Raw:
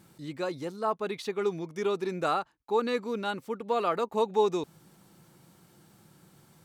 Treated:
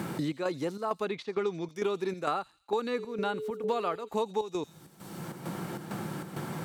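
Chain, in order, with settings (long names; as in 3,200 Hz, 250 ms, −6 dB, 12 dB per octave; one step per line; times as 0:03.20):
0:01.05–0:01.69: low-pass filter 5,900 Hz 12 dB per octave
0:02.97–0:04.07: steady tone 430 Hz −35 dBFS
square-wave tremolo 2.2 Hz, depth 65%, duty 70%
delay with a high-pass on its return 84 ms, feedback 32%, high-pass 4,600 Hz, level −10.5 dB
multiband upward and downward compressor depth 100%
level −1.5 dB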